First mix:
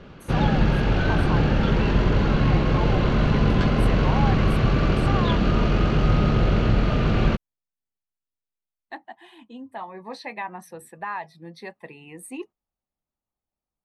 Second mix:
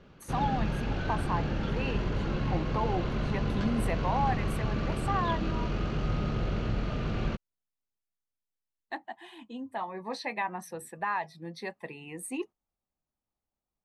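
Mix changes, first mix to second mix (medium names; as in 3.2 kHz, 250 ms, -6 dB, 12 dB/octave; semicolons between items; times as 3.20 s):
background -11.0 dB; master: add peaking EQ 6.5 kHz +3.5 dB 0.84 oct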